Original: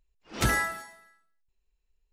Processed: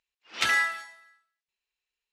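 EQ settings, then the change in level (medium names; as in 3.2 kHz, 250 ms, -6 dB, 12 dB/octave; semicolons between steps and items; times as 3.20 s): band-pass filter 2.8 kHz, Q 0.84; dynamic bell 3 kHz, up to +4 dB, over -45 dBFS, Q 0.98; +4.5 dB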